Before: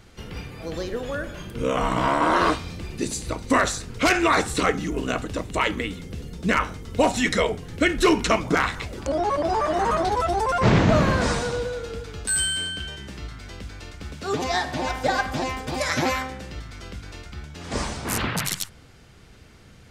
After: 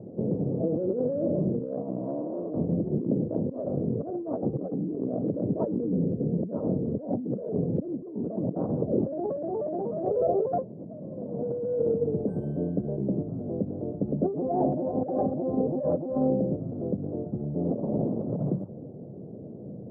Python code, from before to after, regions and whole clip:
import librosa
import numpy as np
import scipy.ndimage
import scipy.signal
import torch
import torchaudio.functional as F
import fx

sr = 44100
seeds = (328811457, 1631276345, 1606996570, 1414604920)

y = fx.chain(x, sr, fx.lower_of_two(delay_ms=1.7),
    fx.cheby_ripple(hz=1900.0, ripple_db=9),
    fx.hum_notches(base_hz=50, count=10), at=(10.05, 10.45))
y = scipy.signal.sosfilt(scipy.signal.ellip(4, 1.0, 70, 600.0, 'lowpass', fs=sr, output='sos'), y)
y = fx.over_compress(y, sr, threshold_db=-36.0, ratio=-1.0)
y = scipy.signal.sosfilt(scipy.signal.butter(4, 140.0, 'highpass', fs=sr, output='sos'), y)
y = y * librosa.db_to_amplitude(8.5)